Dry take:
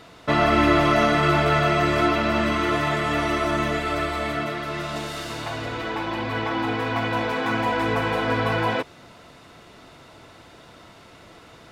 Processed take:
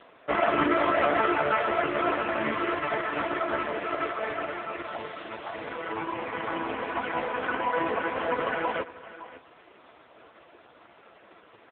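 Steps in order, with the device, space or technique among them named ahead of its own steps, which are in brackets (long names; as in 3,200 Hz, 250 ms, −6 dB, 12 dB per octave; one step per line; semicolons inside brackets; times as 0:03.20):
satellite phone (band-pass filter 310–3,000 Hz; single-tap delay 565 ms −17 dB; AMR narrowband 4.75 kbit/s 8,000 Hz)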